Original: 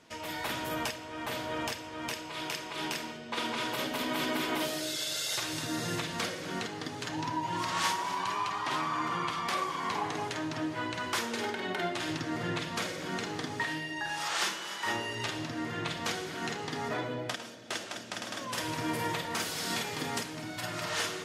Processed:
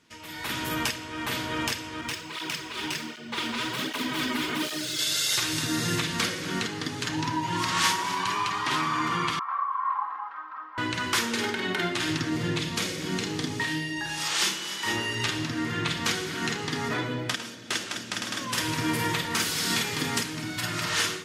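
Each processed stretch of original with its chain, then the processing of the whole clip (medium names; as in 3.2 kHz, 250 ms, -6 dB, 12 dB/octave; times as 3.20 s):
2.01–4.99 s: median filter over 3 samples + cancelling through-zero flanger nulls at 1.3 Hz, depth 6.9 ms
9.39–10.78 s: one-bit delta coder 32 kbps, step -37 dBFS + Butterworth band-pass 1.1 kHz, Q 2.6 + comb 3.8 ms, depth 91%
12.29–14.97 s: peaking EQ 1.4 kHz -6 dB 1.2 oct + doubling 32 ms -12.5 dB
whole clip: peaking EQ 650 Hz -10.5 dB 1 oct; level rider gain up to 10 dB; trim -2 dB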